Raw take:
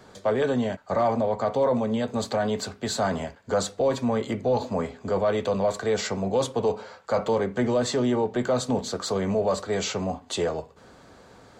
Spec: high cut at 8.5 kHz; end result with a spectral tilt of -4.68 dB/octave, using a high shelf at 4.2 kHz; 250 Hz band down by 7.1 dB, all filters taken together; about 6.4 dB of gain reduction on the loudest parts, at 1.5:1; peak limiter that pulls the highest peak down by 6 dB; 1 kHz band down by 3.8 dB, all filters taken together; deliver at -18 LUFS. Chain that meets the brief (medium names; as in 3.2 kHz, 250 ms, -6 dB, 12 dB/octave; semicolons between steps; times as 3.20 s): low-pass 8.5 kHz; peaking EQ 250 Hz -8.5 dB; peaking EQ 1 kHz -4.5 dB; treble shelf 4.2 kHz -3 dB; compression 1.5:1, threshold -40 dBFS; trim +20 dB; peak limiter -9 dBFS